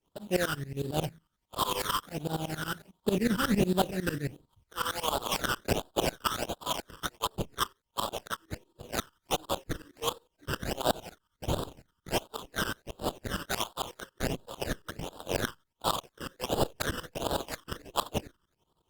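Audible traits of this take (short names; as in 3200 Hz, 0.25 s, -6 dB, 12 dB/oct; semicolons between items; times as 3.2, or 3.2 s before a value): aliases and images of a low sample rate 2200 Hz, jitter 20%; tremolo saw up 11 Hz, depth 95%; phasing stages 12, 1.4 Hz, lowest notch 710–2100 Hz; Opus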